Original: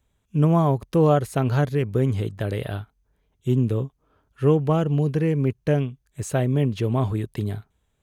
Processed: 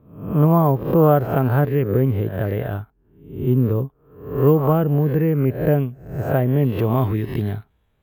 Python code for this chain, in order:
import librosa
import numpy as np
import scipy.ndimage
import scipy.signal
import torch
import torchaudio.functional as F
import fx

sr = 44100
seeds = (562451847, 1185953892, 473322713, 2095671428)

y = fx.spec_swells(x, sr, rise_s=0.58)
y = fx.lowpass(y, sr, hz=fx.steps((0.0, 1700.0), (6.79, 3400.0)), slope=12)
y = np.repeat(y[::3], 3)[:len(y)]
y = y * librosa.db_to_amplitude(3.0)